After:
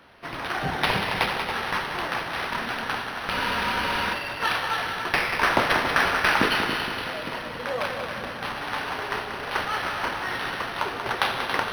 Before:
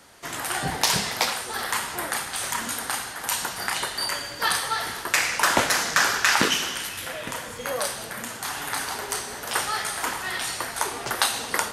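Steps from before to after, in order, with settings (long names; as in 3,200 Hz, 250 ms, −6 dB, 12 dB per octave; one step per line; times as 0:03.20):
echo machine with several playback heads 93 ms, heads second and third, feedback 56%, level −8 dB
frozen spectrum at 0:03.32, 0.80 s
linearly interpolated sample-rate reduction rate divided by 6×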